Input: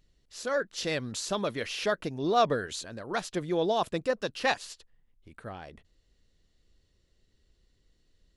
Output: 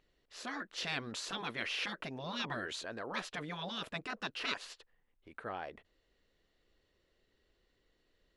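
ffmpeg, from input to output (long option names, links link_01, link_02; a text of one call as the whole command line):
ffmpeg -i in.wav -af "bass=frequency=250:gain=-14,treble=frequency=4000:gain=-14,afftfilt=real='re*lt(hypot(re,im),0.0631)':imag='im*lt(hypot(re,im),0.0631)':win_size=1024:overlap=0.75,volume=3dB" out.wav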